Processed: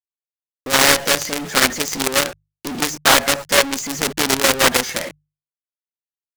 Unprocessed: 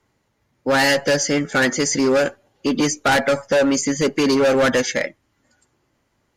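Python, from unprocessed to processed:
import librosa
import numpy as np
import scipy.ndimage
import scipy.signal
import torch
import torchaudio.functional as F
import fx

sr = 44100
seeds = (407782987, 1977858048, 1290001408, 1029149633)

y = fx.quant_companded(x, sr, bits=2)
y = fx.hum_notches(y, sr, base_hz=50, count=3)
y = fx.doppler_dist(y, sr, depth_ms=0.56)
y = F.gain(torch.from_numpy(y), -1.5).numpy()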